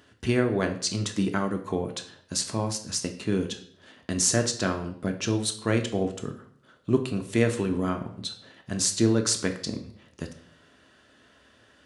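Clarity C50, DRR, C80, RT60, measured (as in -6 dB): 11.0 dB, 4.5 dB, 14.5 dB, 0.60 s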